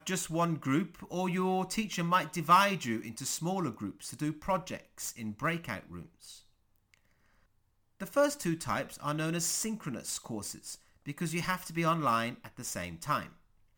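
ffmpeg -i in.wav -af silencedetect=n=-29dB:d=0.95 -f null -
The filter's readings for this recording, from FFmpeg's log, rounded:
silence_start: 5.75
silence_end: 8.02 | silence_duration: 2.27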